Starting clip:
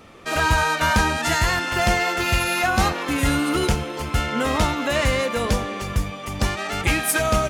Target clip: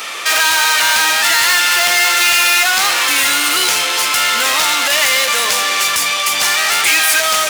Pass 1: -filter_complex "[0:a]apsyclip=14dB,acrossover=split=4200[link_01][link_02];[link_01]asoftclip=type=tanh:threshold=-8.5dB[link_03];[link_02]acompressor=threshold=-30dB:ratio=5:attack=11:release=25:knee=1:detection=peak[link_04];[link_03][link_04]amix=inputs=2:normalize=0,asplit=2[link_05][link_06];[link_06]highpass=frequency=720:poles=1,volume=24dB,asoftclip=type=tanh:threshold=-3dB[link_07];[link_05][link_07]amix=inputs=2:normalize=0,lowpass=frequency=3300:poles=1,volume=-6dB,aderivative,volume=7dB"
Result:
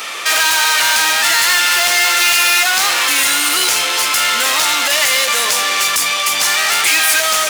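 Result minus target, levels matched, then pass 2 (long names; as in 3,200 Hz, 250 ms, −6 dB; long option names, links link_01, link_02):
soft clipping: distortion +8 dB
-filter_complex "[0:a]apsyclip=14dB,acrossover=split=4200[link_01][link_02];[link_01]asoftclip=type=tanh:threshold=-2dB[link_03];[link_02]acompressor=threshold=-30dB:ratio=5:attack=11:release=25:knee=1:detection=peak[link_04];[link_03][link_04]amix=inputs=2:normalize=0,asplit=2[link_05][link_06];[link_06]highpass=frequency=720:poles=1,volume=24dB,asoftclip=type=tanh:threshold=-3dB[link_07];[link_05][link_07]amix=inputs=2:normalize=0,lowpass=frequency=3300:poles=1,volume=-6dB,aderivative,volume=7dB"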